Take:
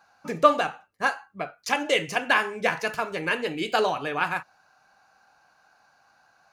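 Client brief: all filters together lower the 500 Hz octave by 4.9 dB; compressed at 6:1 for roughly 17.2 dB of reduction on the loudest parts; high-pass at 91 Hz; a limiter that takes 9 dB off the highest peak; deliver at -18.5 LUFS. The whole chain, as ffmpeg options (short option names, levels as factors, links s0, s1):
-af "highpass=91,equalizer=f=500:t=o:g=-6,acompressor=threshold=0.0251:ratio=6,volume=11.2,alimiter=limit=0.501:level=0:latency=1"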